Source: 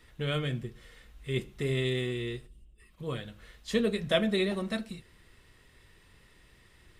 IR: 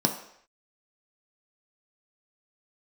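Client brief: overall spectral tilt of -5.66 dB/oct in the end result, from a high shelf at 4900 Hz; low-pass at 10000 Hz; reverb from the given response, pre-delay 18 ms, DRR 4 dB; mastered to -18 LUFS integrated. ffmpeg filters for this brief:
-filter_complex "[0:a]lowpass=10k,highshelf=f=4.9k:g=6.5,asplit=2[a][b];[1:a]atrim=start_sample=2205,adelay=18[c];[b][c]afir=irnorm=-1:irlink=0,volume=-14.5dB[d];[a][d]amix=inputs=2:normalize=0,volume=9dB"

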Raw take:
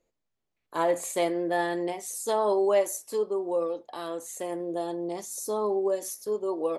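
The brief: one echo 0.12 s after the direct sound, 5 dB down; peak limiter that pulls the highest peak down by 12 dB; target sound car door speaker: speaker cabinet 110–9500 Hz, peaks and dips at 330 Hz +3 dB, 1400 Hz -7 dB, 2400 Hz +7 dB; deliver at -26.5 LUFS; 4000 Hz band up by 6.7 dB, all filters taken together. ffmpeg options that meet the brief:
-af "equalizer=f=4k:t=o:g=7.5,alimiter=level_in=0.5dB:limit=-24dB:level=0:latency=1,volume=-0.5dB,highpass=110,equalizer=f=330:t=q:w=4:g=3,equalizer=f=1.4k:t=q:w=4:g=-7,equalizer=f=2.4k:t=q:w=4:g=7,lowpass=f=9.5k:w=0.5412,lowpass=f=9.5k:w=1.3066,aecho=1:1:120:0.562,volume=5dB"

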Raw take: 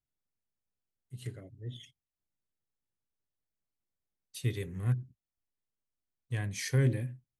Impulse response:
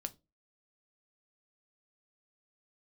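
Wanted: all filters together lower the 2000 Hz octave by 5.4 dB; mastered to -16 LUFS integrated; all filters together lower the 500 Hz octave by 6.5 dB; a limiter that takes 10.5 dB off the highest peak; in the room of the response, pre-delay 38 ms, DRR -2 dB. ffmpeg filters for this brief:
-filter_complex "[0:a]equalizer=f=500:t=o:g=-8.5,equalizer=f=2k:t=o:g=-6,alimiter=level_in=5dB:limit=-24dB:level=0:latency=1,volume=-5dB,asplit=2[a][b];[1:a]atrim=start_sample=2205,adelay=38[c];[b][c]afir=irnorm=-1:irlink=0,volume=4dB[d];[a][d]amix=inputs=2:normalize=0,volume=18.5dB"

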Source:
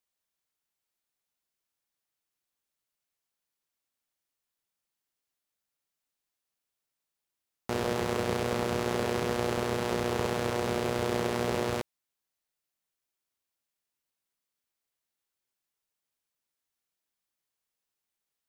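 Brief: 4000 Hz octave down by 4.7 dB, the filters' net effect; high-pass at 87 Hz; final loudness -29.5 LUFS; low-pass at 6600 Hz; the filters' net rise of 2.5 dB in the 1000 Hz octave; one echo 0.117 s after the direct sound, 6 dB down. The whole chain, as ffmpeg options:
-af "highpass=87,lowpass=6.6k,equalizer=f=1k:t=o:g=3.5,equalizer=f=4k:t=o:g=-6,aecho=1:1:117:0.501,volume=-1dB"

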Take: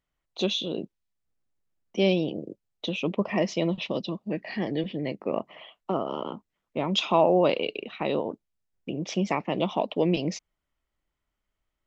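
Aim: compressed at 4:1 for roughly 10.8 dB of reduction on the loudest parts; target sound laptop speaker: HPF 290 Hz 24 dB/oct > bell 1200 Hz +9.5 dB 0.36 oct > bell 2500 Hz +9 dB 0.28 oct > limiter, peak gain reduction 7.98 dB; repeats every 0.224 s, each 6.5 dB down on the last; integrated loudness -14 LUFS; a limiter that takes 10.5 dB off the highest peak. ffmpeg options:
-af "acompressor=threshold=-29dB:ratio=4,alimiter=level_in=4dB:limit=-24dB:level=0:latency=1,volume=-4dB,highpass=f=290:w=0.5412,highpass=f=290:w=1.3066,equalizer=f=1.2k:t=o:w=0.36:g=9.5,equalizer=f=2.5k:t=o:w=0.28:g=9,aecho=1:1:224|448|672|896|1120|1344:0.473|0.222|0.105|0.0491|0.0231|0.0109,volume=26dB,alimiter=limit=-3.5dB:level=0:latency=1"

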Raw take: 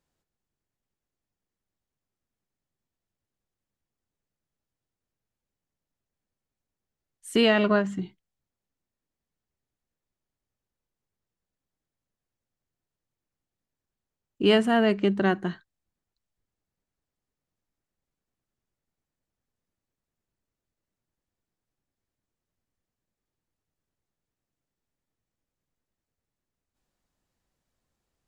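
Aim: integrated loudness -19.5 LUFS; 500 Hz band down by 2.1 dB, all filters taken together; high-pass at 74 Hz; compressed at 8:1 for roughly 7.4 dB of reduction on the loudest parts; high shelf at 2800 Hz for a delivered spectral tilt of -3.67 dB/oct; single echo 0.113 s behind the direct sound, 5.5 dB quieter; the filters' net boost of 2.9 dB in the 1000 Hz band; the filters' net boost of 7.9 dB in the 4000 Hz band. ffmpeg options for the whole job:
-af "highpass=74,equalizer=f=500:t=o:g=-4.5,equalizer=f=1k:t=o:g=4.5,highshelf=f=2.8k:g=8.5,equalizer=f=4k:t=o:g=5,acompressor=threshold=-21dB:ratio=8,aecho=1:1:113:0.531,volume=7.5dB"

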